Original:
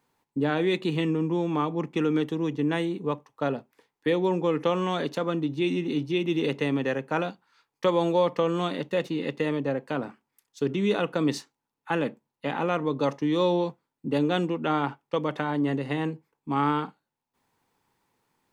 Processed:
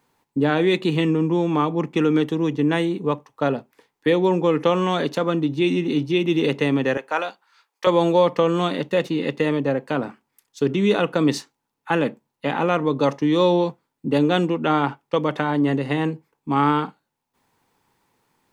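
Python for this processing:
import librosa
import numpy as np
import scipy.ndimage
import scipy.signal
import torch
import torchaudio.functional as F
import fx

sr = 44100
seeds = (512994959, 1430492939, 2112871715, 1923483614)

y = fx.highpass(x, sr, hz=590.0, slope=12, at=(6.97, 7.87))
y = y * librosa.db_to_amplitude(6.0)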